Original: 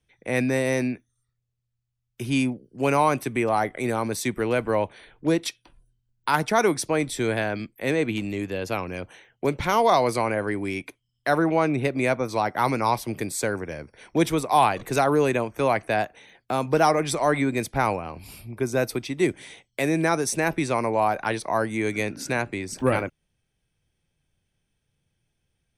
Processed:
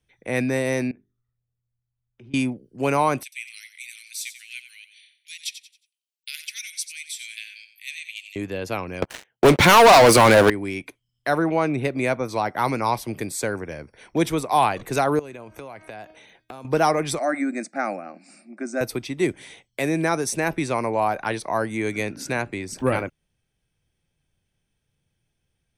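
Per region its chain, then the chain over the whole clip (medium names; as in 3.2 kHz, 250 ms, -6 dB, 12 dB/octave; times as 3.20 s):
0.91–2.34 s: compression 5:1, threshold -43 dBFS + tape spacing loss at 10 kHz 36 dB + hum notches 50/100/150/200/250/300/350/400 Hz
3.23–8.36 s: steep high-pass 2.3 kHz 48 dB/octave + feedback delay 90 ms, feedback 34%, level -11 dB
9.02–10.50 s: high-pass 190 Hz 6 dB/octave + waveshaping leveller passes 5
15.19–16.65 s: band-stop 1.8 kHz, Q 18 + de-hum 314.4 Hz, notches 19 + compression 10:1, threshold -34 dBFS
17.19–18.81 s: brick-wall FIR band-pass 160–9300 Hz + static phaser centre 650 Hz, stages 8
whole clip: none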